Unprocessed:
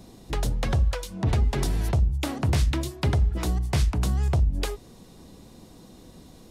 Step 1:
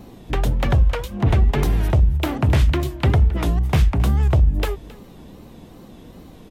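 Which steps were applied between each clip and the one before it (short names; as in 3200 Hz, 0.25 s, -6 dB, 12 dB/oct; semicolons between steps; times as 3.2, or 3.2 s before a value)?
wow and flutter 120 cents; band shelf 6700 Hz -9 dB; echo 0.268 s -20.5 dB; gain +6.5 dB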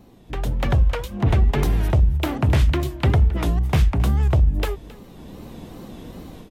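AGC gain up to 13 dB; gain -8.5 dB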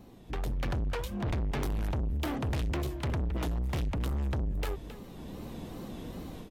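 soft clip -26 dBFS, distortion -6 dB; gain -3 dB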